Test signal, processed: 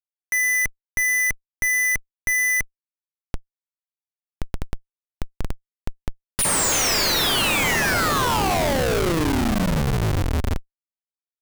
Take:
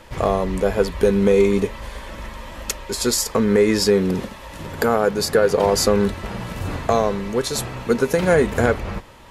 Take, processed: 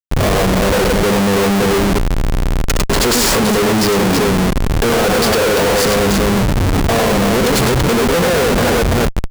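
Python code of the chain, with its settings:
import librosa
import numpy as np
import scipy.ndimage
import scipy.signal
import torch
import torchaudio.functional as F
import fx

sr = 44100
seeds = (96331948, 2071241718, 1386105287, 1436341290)

y = fx.echo_multitap(x, sr, ms=(64, 101, 105, 331), db=(-10.5, -6.5, -6.5, -4.5))
y = fx.schmitt(y, sr, flips_db=-24.0)
y = y * librosa.db_to_amplitude(4.0)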